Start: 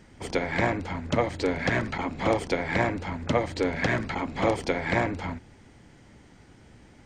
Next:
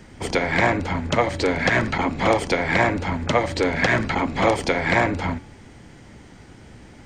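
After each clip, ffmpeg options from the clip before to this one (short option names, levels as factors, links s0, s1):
-filter_complex "[0:a]bandreject=f=286:t=h:w=4,bandreject=f=572:t=h:w=4,bandreject=f=858:t=h:w=4,bandreject=f=1144:t=h:w=4,bandreject=f=1430:t=h:w=4,bandreject=f=1716:t=h:w=4,bandreject=f=2002:t=h:w=4,bandreject=f=2288:t=h:w=4,bandreject=f=2574:t=h:w=4,bandreject=f=2860:t=h:w=4,bandreject=f=3146:t=h:w=4,bandreject=f=3432:t=h:w=4,bandreject=f=3718:t=h:w=4,bandreject=f=4004:t=h:w=4,bandreject=f=4290:t=h:w=4,bandreject=f=4576:t=h:w=4,bandreject=f=4862:t=h:w=4,bandreject=f=5148:t=h:w=4,bandreject=f=5434:t=h:w=4,bandreject=f=5720:t=h:w=4,bandreject=f=6006:t=h:w=4,bandreject=f=6292:t=h:w=4,bandreject=f=6578:t=h:w=4,bandreject=f=6864:t=h:w=4,bandreject=f=7150:t=h:w=4,bandreject=f=7436:t=h:w=4,bandreject=f=7722:t=h:w=4,bandreject=f=8008:t=h:w=4,bandreject=f=8294:t=h:w=4,bandreject=f=8580:t=h:w=4,bandreject=f=8866:t=h:w=4,bandreject=f=9152:t=h:w=4,bandreject=f=9438:t=h:w=4,bandreject=f=9724:t=h:w=4,acrossover=split=630|1500[s0][s1][s2];[s0]alimiter=limit=0.0708:level=0:latency=1:release=165[s3];[s3][s1][s2]amix=inputs=3:normalize=0,volume=2.51"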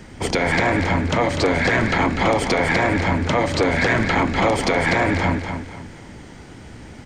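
-af "alimiter=limit=0.2:level=0:latency=1:release=30,aecho=1:1:246|492|738|984:0.447|0.147|0.0486|0.0161,volume=1.68"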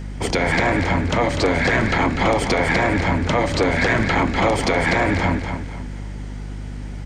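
-af "aeval=exprs='val(0)+0.0355*(sin(2*PI*50*n/s)+sin(2*PI*2*50*n/s)/2+sin(2*PI*3*50*n/s)/3+sin(2*PI*4*50*n/s)/4+sin(2*PI*5*50*n/s)/5)':c=same"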